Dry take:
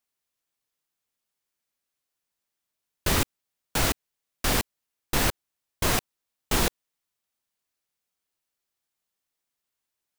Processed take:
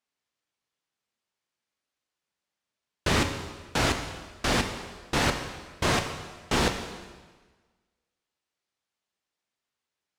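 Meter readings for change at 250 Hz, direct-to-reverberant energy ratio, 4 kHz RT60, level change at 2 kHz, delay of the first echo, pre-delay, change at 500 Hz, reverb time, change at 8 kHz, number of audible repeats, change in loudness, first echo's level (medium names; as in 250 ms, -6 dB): +2.0 dB, 5.5 dB, 1.3 s, +2.0 dB, no echo, 5 ms, +2.0 dB, 1.4 s, -4.5 dB, no echo, -1.0 dB, no echo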